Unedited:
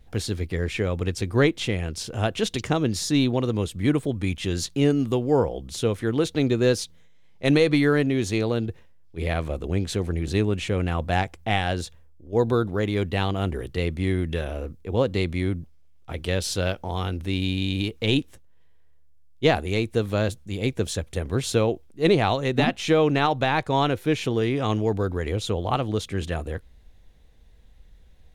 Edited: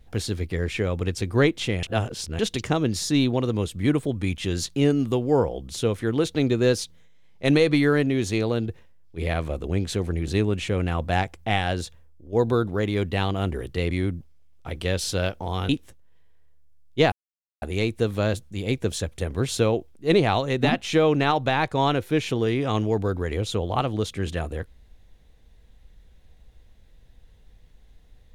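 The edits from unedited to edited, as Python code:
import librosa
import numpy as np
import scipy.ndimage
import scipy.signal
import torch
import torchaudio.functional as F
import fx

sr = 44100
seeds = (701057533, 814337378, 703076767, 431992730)

y = fx.edit(x, sr, fx.reverse_span(start_s=1.83, length_s=0.56),
    fx.cut(start_s=13.91, length_s=1.43),
    fx.cut(start_s=17.12, length_s=1.02),
    fx.insert_silence(at_s=19.57, length_s=0.5), tone=tone)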